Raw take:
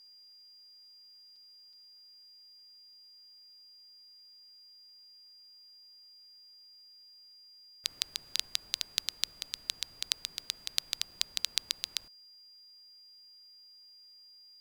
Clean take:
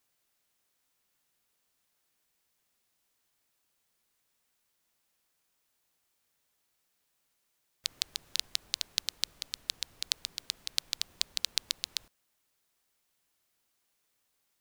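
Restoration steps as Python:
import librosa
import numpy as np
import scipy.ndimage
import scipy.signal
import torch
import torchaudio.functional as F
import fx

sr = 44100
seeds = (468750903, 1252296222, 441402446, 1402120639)

y = fx.notch(x, sr, hz=4800.0, q=30.0)
y = fx.fix_interpolate(y, sr, at_s=(1.36, 1.73, 11.11, 12.01), length_ms=4.1)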